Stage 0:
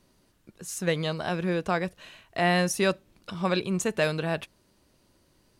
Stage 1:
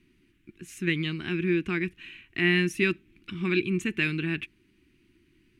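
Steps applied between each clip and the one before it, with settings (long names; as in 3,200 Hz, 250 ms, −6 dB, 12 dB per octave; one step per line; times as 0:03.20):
drawn EQ curve 190 Hz 0 dB, 350 Hz +7 dB, 560 Hz −29 dB, 2,400 Hz +9 dB, 4,600 Hz −11 dB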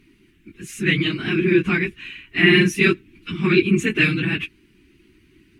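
random phases in long frames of 50 ms
level +9 dB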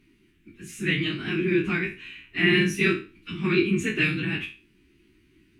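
peak hold with a decay on every bin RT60 0.34 s
level −7 dB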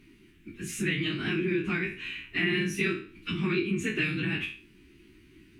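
downward compressor 3 to 1, threshold −33 dBFS, peak gain reduction 12.5 dB
level +4.5 dB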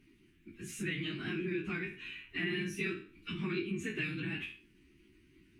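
spectral magnitudes quantised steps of 15 dB
level −7.5 dB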